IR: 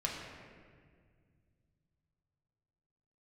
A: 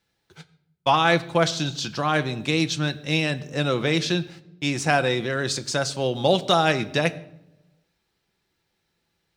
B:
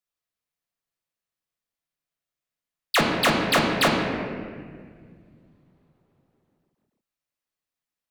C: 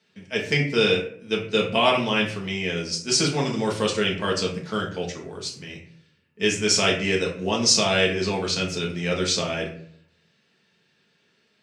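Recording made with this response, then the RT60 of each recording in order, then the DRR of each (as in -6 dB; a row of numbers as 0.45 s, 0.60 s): B; no single decay rate, 1.9 s, 0.60 s; 9.5 dB, -2.5 dB, -2.5 dB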